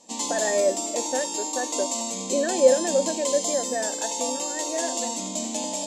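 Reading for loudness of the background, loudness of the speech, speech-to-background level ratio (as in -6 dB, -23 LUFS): -27.5 LUFS, -26.5 LUFS, 1.0 dB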